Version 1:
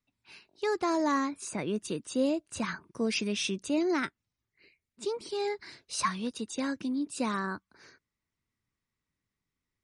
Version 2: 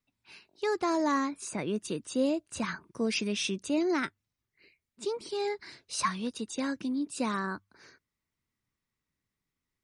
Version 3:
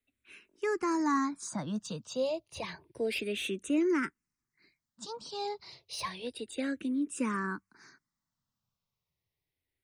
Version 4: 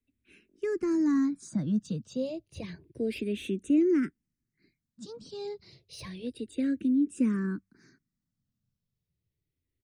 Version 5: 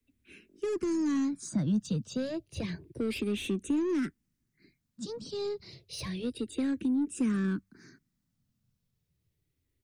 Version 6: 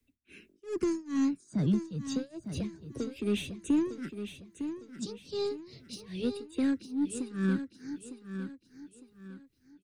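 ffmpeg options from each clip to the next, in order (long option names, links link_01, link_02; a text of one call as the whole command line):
ffmpeg -i in.wav -af "bandreject=frequency=50:width_type=h:width=6,bandreject=frequency=100:width_type=h:width=6" out.wav
ffmpeg -i in.wav -filter_complex "[0:a]acrossover=split=270|940[link_01][link_02][link_03];[link_03]asoftclip=type=tanh:threshold=-27.5dB[link_04];[link_01][link_02][link_04]amix=inputs=3:normalize=0,asplit=2[link_05][link_06];[link_06]afreqshift=-0.3[link_07];[link_05][link_07]amix=inputs=2:normalize=1,volume=1dB" out.wav
ffmpeg -i in.wav -af "firequalizer=gain_entry='entry(240,0);entry(910,-24);entry(1600,-14)':delay=0.05:min_phase=1,volume=7.5dB" out.wav
ffmpeg -i in.wav -filter_complex "[0:a]acrossover=split=160|420|3600[link_01][link_02][link_03][link_04];[link_02]acompressor=threshold=-39dB:ratio=6[link_05];[link_03]aeval=exprs='(tanh(158*val(0)+0.2)-tanh(0.2))/158':channel_layout=same[link_06];[link_01][link_05][link_06][link_04]amix=inputs=4:normalize=0,volume=5.5dB" out.wav
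ffmpeg -i in.wav -filter_complex "[0:a]tremolo=f=2.4:d=0.95,asplit=2[link_01][link_02];[link_02]aecho=0:1:906|1812|2718|3624:0.335|0.117|0.041|0.0144[link_03];[link_01][link_03]amix=inputs=2:normalize=0,volume=3dB" out.wav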